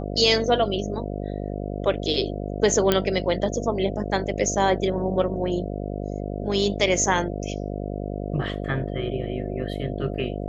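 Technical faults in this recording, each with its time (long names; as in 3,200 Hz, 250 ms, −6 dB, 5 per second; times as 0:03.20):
mains buzz 50 Hz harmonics 14 −30 dBFS
0:02.92: click −5 dBFS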